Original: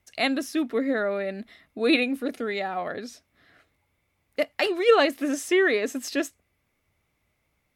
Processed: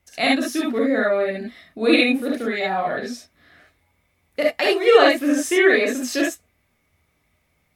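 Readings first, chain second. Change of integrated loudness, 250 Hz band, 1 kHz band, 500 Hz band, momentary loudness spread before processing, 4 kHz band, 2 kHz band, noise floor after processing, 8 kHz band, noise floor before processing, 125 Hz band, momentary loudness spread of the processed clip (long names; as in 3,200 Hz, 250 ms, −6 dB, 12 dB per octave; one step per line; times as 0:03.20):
+6.0 dB, +6.0 dB, +6.0 dB, +6.0 dB, 15 LU, +6.0 dB, +6.5 dB, −68 dBFS, +6.0 dB, −74 dBFS, can't be measured, 13 LU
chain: reverb whose tail is shaped and stops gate 90 ms rising, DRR −3 dB
level +1.5 dB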